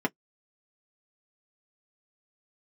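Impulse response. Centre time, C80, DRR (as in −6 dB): 5 ms, 60.0 dB, −0.5 dB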